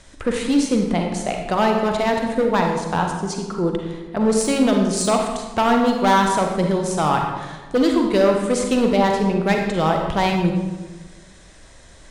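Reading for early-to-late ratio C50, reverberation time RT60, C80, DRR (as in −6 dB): 3.5 dB, 1.3 s, 5.5 dB, 2.0 dB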